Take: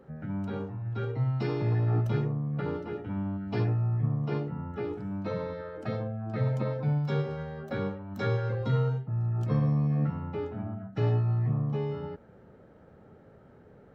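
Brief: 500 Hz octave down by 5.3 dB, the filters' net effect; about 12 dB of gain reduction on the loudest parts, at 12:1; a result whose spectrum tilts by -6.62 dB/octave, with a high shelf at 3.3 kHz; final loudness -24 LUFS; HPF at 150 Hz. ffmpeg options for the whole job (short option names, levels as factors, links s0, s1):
-af "highpass=150,equalizer=f=500:t=o:g=-6.5,highshelf=f=3300:g=3.5,acompressor=threshold=0.0126:ratio=12,volume=8.41"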